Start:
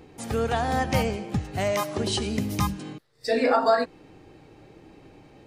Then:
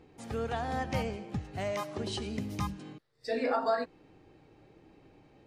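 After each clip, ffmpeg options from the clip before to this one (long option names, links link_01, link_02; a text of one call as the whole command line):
ffmpeg -i in.wav -af "highshelf=frequency=8600:gain=-11,volume=-8.5dB" out.wav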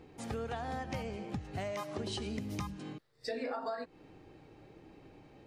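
ffmpeg -i in.wav -af "acompressor=threshold=-37dB:ratio=10,volume=2.5dB" out.wav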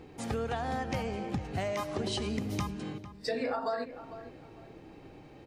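ffmpeg -i in.wav -filter_complex "[0:a]asplit=2[link_01][link_02];[link_02]adelay=451,lowpass=frequency=2100:poles=1,volume=-13dB,asplit=2[link_03][link_04];[link_04]adelay=451,lowpass=frequency=2100:poles=1,volume=0.29,asplit=2[link_05][link_06];[link_06]adelay=451,lowpass=frequency=2100:poles=1,volume=0.29[link_07];[link_01][link_03][link_05][link_07]amix=inputs=4:normalize=0,volume=5dB" out.wav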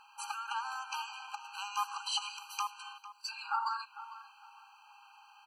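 ffmpeg -i in.wav -af "afftfilt=real='re*eq(mod(floor(b*sr/1024/800),2),1)':imag='im*eq(mod(floor(b*sr/1024/800),2),1)':win_size=1024:overlap=0.75,volume=5dB" out.wav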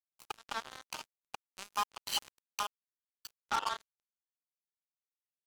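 ffmpeg -i in.wav -af "acrusher=bits=4:mix=0:aa=0.5" out.wav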